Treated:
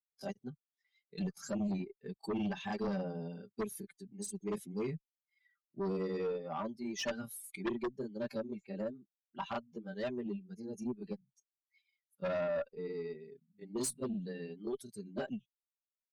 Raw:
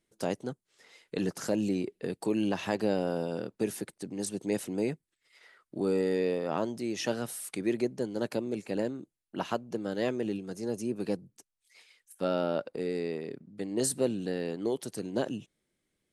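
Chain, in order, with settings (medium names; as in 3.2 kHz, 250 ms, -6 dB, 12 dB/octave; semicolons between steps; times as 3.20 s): expander on every frequency bin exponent 2; comb 5.1 ms, depth 79%; granulator 121 ms, grains 20 per s, spray 24 ms, pitch spread up and down by 0 st; Chebyshev shaper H 3 -8 dB, 5 -10 dB, 6 -30 dB, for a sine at -19 dBFS; trim -2 dB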